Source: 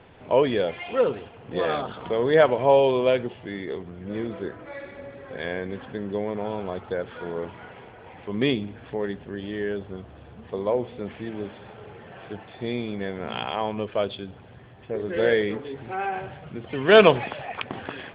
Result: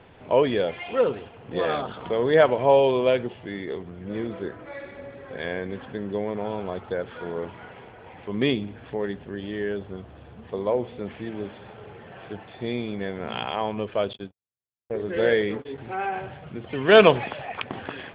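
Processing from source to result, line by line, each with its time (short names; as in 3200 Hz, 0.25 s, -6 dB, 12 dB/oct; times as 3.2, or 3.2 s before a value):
14.13–15.78 gate -37 dBFS, range -59 dB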